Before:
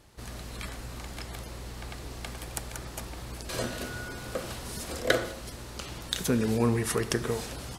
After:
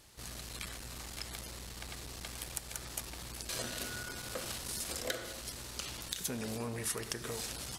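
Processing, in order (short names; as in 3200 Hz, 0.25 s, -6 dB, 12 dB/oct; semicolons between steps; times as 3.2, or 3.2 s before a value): high shelf 2100 Hz +11 dB; compressor 4:1, threshold -27 dBFS, peak gain reduction 12 dB; core saturation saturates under 2600 Hz; gain -6 dB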